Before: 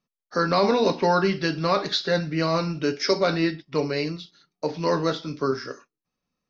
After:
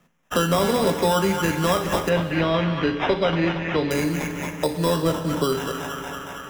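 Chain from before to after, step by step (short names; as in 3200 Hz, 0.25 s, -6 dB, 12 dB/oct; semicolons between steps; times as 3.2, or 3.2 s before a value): thin delay 0.23 s, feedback 49%, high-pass 1400 Hz, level -3.5 dB; sample-and-hold 10×; 2.09–3.91 LPF 3400 Hz 24 dB/oct; 5.02–5.44 tilt shelf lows +4 dB; reverb RT60 1.5 s, pre-delay 3 ms, DRR 8.5 dB; three-band squash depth 70%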